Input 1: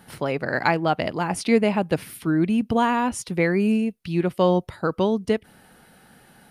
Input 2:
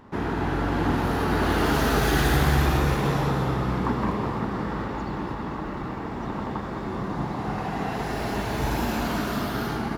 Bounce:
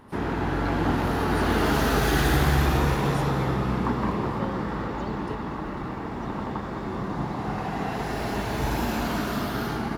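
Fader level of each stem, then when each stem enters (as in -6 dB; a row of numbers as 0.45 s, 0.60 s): -16.5 dB, -0.5 dB; 0.00 s, 0.00 s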